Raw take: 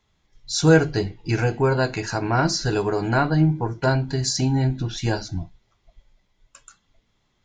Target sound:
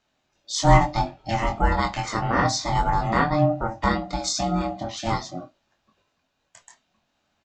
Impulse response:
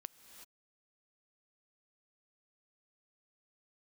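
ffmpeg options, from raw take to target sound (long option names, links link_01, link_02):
-filter_complex "[0:a]highpass=260,lowshelf=frequency=450:gain=7,aeval=exprs='val(0)*sin(2*PI*450*n/s)':channel_layout=same,asplit=2[link_01][link_02];[link_02]adelay=23,volume=-5dB[link_03];[link_01][link_03]amix=inputs=2:normalize=0"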